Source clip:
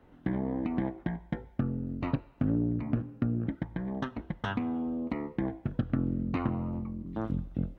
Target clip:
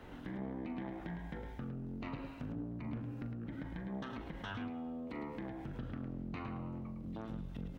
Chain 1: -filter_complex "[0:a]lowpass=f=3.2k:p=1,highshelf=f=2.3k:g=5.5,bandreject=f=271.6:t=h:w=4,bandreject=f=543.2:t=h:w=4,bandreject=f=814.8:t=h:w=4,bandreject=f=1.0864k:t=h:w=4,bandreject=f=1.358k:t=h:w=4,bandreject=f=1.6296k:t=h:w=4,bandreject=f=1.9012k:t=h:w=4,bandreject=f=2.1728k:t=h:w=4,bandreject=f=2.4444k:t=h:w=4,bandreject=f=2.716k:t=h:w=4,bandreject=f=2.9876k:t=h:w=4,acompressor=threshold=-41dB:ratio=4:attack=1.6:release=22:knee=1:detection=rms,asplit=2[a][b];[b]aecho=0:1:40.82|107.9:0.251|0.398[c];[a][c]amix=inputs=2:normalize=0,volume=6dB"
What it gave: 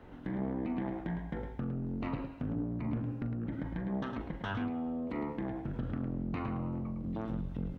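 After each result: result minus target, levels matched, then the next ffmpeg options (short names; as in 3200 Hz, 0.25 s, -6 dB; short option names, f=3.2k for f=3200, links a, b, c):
compressor: peak gain reduction -7 dB; 4000 Hz band -5.5 dB
-filter_complex "[0:a]lowpass=f=3.2k:p=1,highshelf=f=2.3k:g=5.5,bandreject=f=271.6:t=h:w=4,bandreject=f=543.2:t=h:w=4,bandreject=f=814.8:t=h:w=4,bandreject=f=1.0864k:t=h:w=4,bandreject=f=1.358k:t=h:w=4,bandreject=f=1.6296k:t=h:w=4,bandreject=f=1.9012k:t=h:w=4,bandreject=f=2.1728k:t=h:w=4,bandreject=f=2.4444k:t=h:w=4,bandreject=f=2.716k:t=h:w=4,bandreject=f=2.9876k:t=h:w=4,acompressor=threshold=-50dB:ratio=4:attack=1.6:release=22:knee=1:detection=rms,asplit=2[a][b];[b]aecho=0:1:40.82|107.9:0.251|0.398[c];[a][c]amix=inputs=2:normalize=0,volume=6dB"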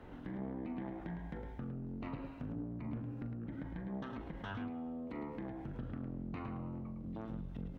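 4000 Hz band -5.0 dB
-filter_complex "[0:a]lowpass=f=3.2k:p=1,highshelf=f=2.3k:g=15.5,bandreject=f=271.6:t=h:w=4,bandreject=f=543.2:t=h:w=4,bandreject=f=814.8:t=h:w=4,bandreject=f=1.0864k:t=h:w=4,bandreject=f=1.358k:t=h:w=4,bandreject=f=1.6296k:t=h:w=4,bandreject=f=1.9012k:t=h:w=4,bandreject=f=2.1728k:t=h:w=4,bandreject=f=2.4444k:t=h:w=4,bandreject=f=2.716k:t=h:w=4,bandreject=f=2.9876k:t=h:w=4,acompressor=threshold=-50dB:ratio=4:attack=1.6:release=22:knee=1:detection=rms,asplit=2[a][b];[b]aecho=0:1:40.82|107.9:0.251|0.398[c];[a][c]amix=inputs=2:normalize=0,volume=6dB"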